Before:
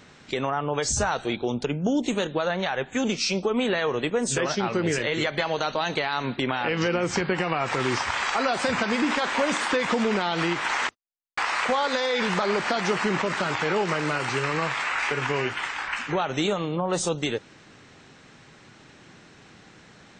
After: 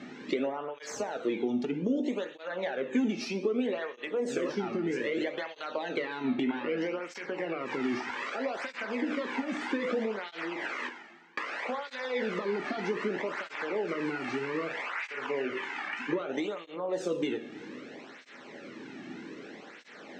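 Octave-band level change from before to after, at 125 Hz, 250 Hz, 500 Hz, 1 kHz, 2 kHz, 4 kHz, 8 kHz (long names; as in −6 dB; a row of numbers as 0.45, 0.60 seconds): −14.5, −4.5, −6.0, −12.0, −9.5, −13.5, −17.5 decibels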